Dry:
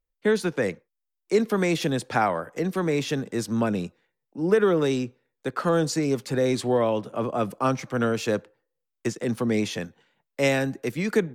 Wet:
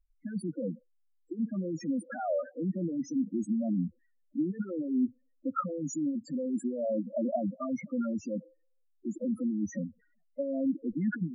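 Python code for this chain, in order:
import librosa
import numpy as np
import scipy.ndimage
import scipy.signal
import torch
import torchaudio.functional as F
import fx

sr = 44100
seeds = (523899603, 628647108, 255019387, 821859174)

y = fx.low_shelf(x, sr, hz=110.0, db=8.5)
y = fx.over_compress(y, sr, threshold_db=-26.0, ratio=-1.0)
y = fx.fixed_phaser(y, sr, hz=630.0, stages=8)
y = fx.spec_topn(y, sr, count=4)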